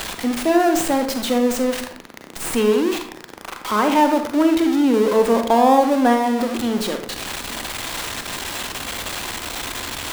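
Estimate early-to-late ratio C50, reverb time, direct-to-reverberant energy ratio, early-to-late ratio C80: 7.5 dB, 0.55 s, 5.5 dB, 11.5 dB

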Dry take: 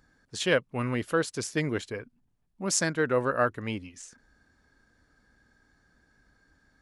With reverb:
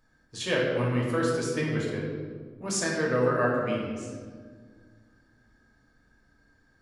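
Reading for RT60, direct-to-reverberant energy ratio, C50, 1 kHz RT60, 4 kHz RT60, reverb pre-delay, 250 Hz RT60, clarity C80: 1.8 s, -4.5 dB, 1.0 dB, 1.5 s, 1.0 s, 3 ms, 2.5 s, 3.0 dB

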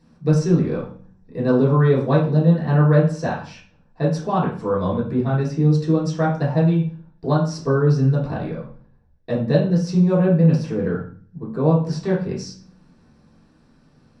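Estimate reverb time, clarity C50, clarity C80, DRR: 0.45 s, 5.5 dB, 10.0 dB, -7.0 dB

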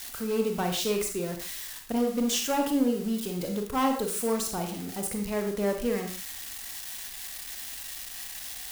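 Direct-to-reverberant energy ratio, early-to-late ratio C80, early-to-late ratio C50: 3.5 dB, 10.0 dB, 6.0 dB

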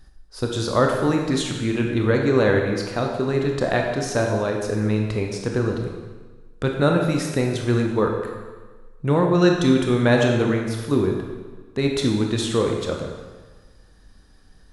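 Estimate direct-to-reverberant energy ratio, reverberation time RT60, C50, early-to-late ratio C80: 1.0 dB, 1.4 s, 3.0 dB, 5.0 dB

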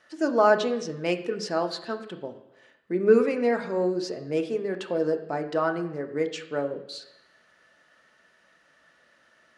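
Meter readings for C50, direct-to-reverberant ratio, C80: 11.5 dB, 5.0 dB, 13.5 dB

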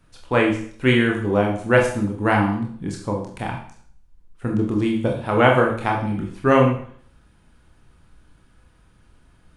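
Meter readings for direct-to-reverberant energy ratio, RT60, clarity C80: 0.0 dB, 0.55 s, 9.5 dB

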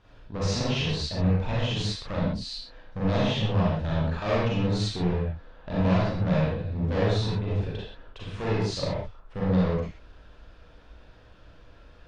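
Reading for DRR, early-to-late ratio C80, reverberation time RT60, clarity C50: -7.5 dB, 1.5 dB, no single decay rate, -3.0 dB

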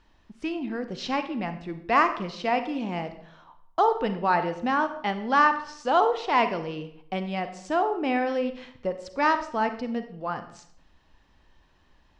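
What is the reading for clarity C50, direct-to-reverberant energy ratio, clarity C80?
11.0 dB, 9.0 dB, 13.5 dB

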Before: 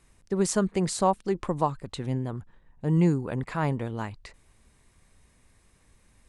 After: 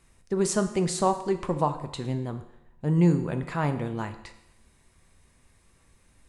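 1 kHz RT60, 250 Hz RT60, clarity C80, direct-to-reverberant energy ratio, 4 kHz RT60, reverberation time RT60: 0.85 s, 0.85 s, 13.5 dB, 7.0 dB, 0.80 s, 0.85 s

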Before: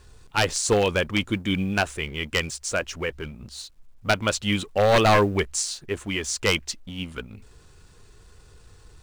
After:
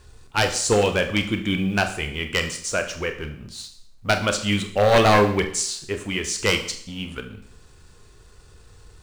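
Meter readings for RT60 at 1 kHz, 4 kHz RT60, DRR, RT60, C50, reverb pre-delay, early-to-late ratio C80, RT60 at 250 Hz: 0.60 s, 0.60 s, 6.0 dB, 0.60 s, 11.0 dB, 26 ms, 13.5 dB, 0.60 s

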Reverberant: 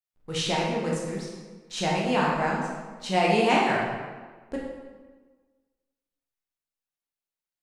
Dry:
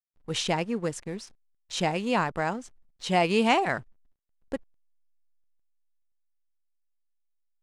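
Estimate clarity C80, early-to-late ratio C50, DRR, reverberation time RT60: 3.5 dB, 0.5 dB, -4.0 dB, 1.4 s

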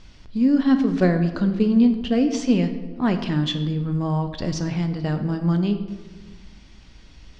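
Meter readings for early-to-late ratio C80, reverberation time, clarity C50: 11.5 dB, 1.4 s, 9.5 dB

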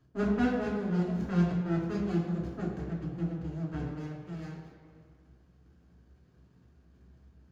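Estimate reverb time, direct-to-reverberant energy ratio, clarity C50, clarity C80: 2.0 s, -4.0 dB, 3.0 dB, 5.0 dB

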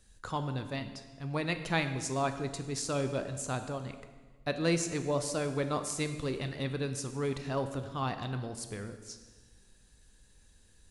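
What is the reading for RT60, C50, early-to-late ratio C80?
1.4 s, 10.0 dB, 11.0 dB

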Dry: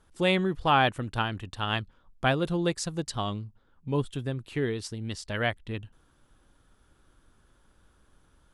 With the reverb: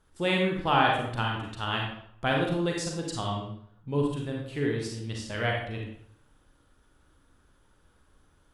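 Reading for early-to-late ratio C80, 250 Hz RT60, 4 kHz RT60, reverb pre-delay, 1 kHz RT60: 6.0 dB, 0.65 s, 0.55 s, 34 ms, 0.65 s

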